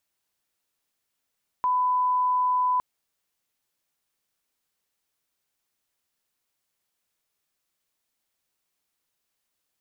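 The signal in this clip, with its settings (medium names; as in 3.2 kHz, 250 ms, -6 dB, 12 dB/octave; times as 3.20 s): line-up tone -20 dBFS 1.16 s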